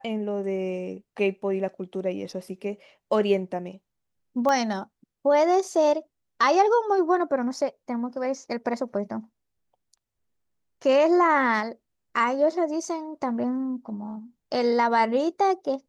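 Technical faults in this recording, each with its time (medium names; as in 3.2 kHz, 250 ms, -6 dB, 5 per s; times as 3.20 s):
4.49 s: pop -14 dBFS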